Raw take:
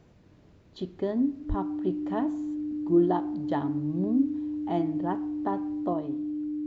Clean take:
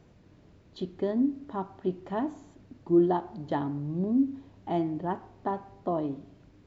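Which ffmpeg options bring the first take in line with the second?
ffmpeg -i in.wav -filter_complex "[0:a]bandreject=frequency=300:width=30,asplit=3[link_01][link_02][link_03];[link_01]afade=type=out:start_time=1.48:duration=0.02[link_04];[link_02]highpass=frequency=140:width=0.5412,highpass=frequency=140:width=1.3066,afade=type=in:start_time=1.48:duration=0.02,afade=type=out:start_time=1.6:duration=0.02[link_05];[link_03]afade=type=in:start_time=1.6:duration=0.02[link_06];[link_04][link_05][link_06]amix=inputs=3:normalize=0,asetnsamples=nb_out_samples=441:pad=0,asendcmd='5.93 volume volume 3.5dB',volume=0dB" out.wav

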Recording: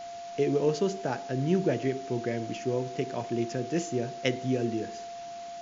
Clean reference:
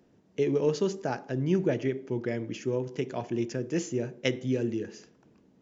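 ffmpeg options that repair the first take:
ffmpeg -i in.wav -af "bandreject=frequency=690:width=30,afwtdn=0.004" out.wav

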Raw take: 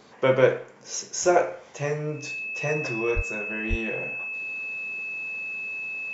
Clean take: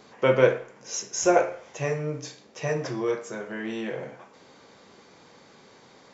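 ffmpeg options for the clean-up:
ffmpeg -i in.wav -filter_complex "[0:a]bandreject=frequency=2600:width=30,asplit=3[link_01][link_02][link_03];[link_01]afade=type=out:start_time=3.15:duration=0.02[link_04];[link_02]highpass=frequency=140:width=0.5412,highpass=frequency=140:width=1.3066,afade=type=in:start_time=3.15:duration=0.02,afade=type=out:start_time=3.27:duration=0.02[link_05];[link_03]afade=type=in:start_time=3.27:duration=0.02[link_06];[link_04][link_05][link_06]amix=inputs=3:normalize=0,asplit=3[link_07][link_08][link_09];[link_07]afade=type=out:start_time=3.69:duration=0.02[link_10];[link_08]highpass=frequency=140:width=0.5412,highpass=frequency=140:width=1.3066,afade=type=in:start_time=3.69:duration=0.02,afade=type=out:start_time=3.81:duration=0.02[link_11];[link_09]afade=type=in:start_time=3.81:duration=0.02[link_12];[link_10][link_11][link_12]amix=inputs=3:normalize=0" out.wav

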